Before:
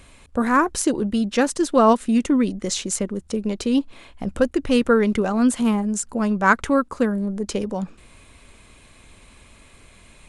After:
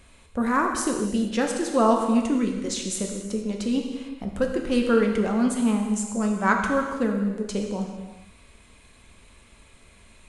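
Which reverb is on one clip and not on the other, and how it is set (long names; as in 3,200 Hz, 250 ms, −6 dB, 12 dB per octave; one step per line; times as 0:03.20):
reverb whose tail is shaped and stops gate 480 ms falling, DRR 1.5 dB
level −6 dB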